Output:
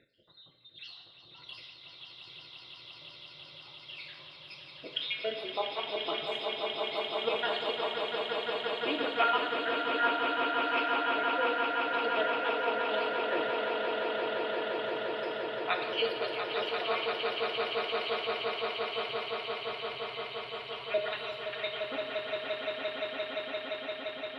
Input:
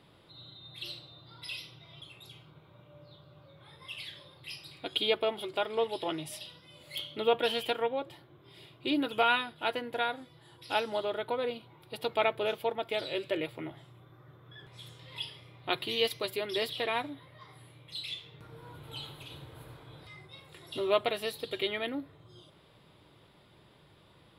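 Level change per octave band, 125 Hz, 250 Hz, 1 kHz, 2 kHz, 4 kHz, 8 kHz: -8.0 dB, -2.0 dB, +4.0 dB, +4.5 dB, +2.0 dB, under -10 dB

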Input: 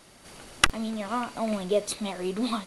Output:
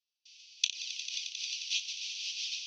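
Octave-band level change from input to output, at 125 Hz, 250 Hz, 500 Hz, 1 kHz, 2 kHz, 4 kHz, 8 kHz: under -40 dB, under -40 dB, under -40 dB, under -40 dB, -9.5 dB, 0.0 dB, -2.0 dB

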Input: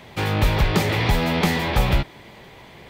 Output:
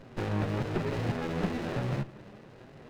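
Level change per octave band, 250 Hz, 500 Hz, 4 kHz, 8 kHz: -8.5, -8.5, -19.0, -18.5 dB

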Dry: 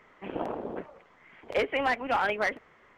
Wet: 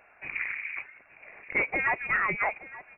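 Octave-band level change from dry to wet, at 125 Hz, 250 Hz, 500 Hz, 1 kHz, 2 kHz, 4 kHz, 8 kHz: +0.5 dB, -6.5 dB, -8.5 dB, -2.5 dB, +5.0 dB, under -15 dB, n/a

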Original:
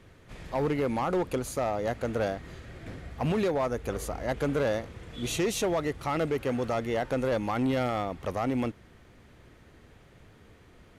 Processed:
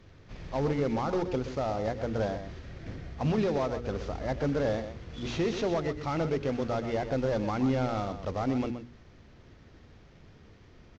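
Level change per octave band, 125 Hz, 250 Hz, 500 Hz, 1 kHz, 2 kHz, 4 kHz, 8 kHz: +1.5, 0.0, -1.5, -2.0, -4.0, -3.0, -10.5 dB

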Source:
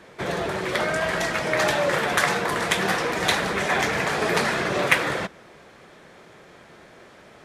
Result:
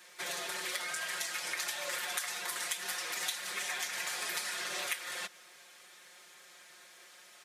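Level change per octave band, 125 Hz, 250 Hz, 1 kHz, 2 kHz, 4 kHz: -32.0, -27.0, -18.0, -13.5, -8.0 dB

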